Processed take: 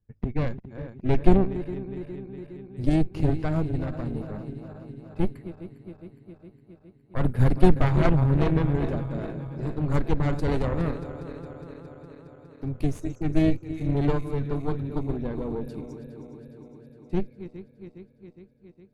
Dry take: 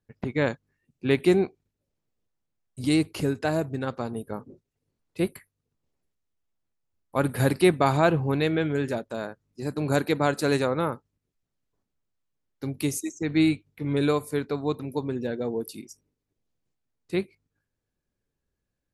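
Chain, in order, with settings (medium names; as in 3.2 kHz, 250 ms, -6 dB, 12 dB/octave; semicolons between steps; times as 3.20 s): backward echo that repeats 206 ms, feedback 80%, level -12 dB; Chebyshev shaper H 4 -7 dB, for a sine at -6 dBFS; RIAA curve playback; trim -6.5 dB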